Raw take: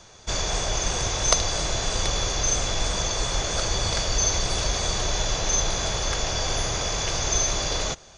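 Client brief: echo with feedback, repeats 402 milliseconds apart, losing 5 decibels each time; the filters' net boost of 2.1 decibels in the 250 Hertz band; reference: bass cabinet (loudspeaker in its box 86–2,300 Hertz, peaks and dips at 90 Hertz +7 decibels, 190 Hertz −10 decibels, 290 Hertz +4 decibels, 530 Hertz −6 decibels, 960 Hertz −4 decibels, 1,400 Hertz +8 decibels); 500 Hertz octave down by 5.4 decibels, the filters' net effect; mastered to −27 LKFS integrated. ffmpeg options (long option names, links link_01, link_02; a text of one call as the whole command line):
ffmpeg -i in.wav -af "highpass=frequency=86:width=0.5412,highpass=frequency=86:width=1.3066,equalizer=frequency=90:width_type=q:width=4:gain=7,equalizer=frequency=190:width_type=q:width=4:gain=-10,equalizer=frequency=290:width_type=q:width=4:gain=4,equalizer=frequency=530:width_type=q:width=4:gain=-6,equalizer=frequency=960:width_type=q:width=4:gain=-4,equalizer=frequency=1400:width_type=q:width=4:gain=8,lowpass=frequency=2300:width=0.5412,lowpass=frequency=2300:width=1.3066,equalizer=frequency=250:width_type=o:gain=6,equalizer=frequency=500:width_type=o:gain=-5.5,aecho=1:1:402|804|1206|1608|2010|2412|2814:0.562|0.315|0.176|0.0988|0.0553|0.031|0.0173,volume=2dB" out.wav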